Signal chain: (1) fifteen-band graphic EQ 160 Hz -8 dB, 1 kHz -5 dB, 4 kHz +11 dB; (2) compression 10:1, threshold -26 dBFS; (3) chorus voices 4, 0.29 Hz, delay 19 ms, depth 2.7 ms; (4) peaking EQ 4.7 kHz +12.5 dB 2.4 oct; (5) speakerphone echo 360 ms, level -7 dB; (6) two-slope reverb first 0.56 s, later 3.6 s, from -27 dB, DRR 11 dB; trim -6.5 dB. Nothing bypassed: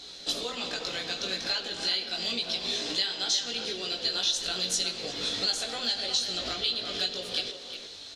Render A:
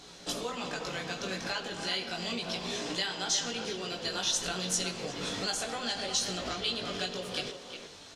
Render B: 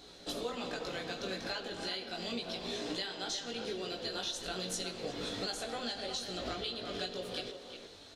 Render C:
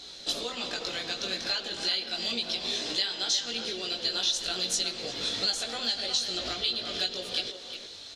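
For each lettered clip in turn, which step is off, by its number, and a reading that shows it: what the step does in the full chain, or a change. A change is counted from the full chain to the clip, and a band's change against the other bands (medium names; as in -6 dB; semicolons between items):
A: 1, momentary loudness spread change +1 LU; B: 4, 4 kHz band -10.0 dB; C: 6, echo-to-direct -5.5 dB to -7.5 dB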